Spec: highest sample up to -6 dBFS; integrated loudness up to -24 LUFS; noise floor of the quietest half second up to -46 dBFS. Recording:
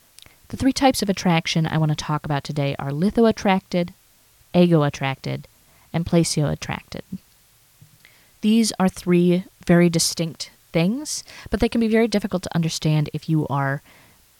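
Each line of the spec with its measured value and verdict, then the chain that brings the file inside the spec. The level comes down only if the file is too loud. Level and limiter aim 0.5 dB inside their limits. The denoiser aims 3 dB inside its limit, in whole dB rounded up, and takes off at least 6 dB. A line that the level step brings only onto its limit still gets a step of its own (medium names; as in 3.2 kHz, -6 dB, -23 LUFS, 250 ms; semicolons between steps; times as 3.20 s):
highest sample -3.5 dBFS: fail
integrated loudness -21.0 LUFS: fail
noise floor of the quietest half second -56 dBFS: pass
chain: trim -3.5 dB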